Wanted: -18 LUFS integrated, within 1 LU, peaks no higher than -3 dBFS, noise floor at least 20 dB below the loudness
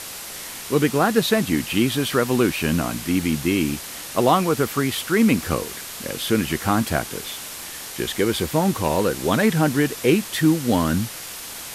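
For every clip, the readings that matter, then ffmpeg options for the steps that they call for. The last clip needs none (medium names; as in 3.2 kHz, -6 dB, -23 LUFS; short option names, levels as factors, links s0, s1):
noise floor -35 dBFS; noise floor target -42 dBFS; loudness -21.5 LUFS; peak level -4.5 dBFS; loudness target -18.0 LUFS
-> -af "afftdn=nr=7:nf=-35"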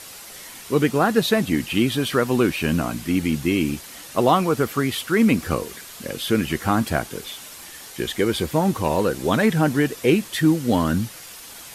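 noise floor -40 dBFS; noise floor target -42 dBFS
-> -af "afftdn=nr=6:nf=-40"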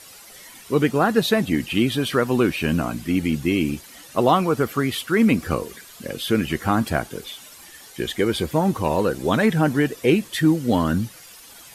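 noise floor -45 dBFS; loudness -21.5 LUFS; peak level -4.5 dBFS; loudness target -18.0 LUFS
-> -af "volume=1.5,alimiter=limit=0.708:level=0:latency=1"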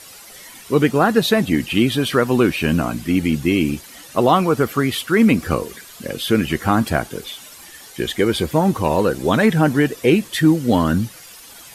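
loudness -18.0 LUFS; peak level -3.0 dBFS; noise floor -41 dBFS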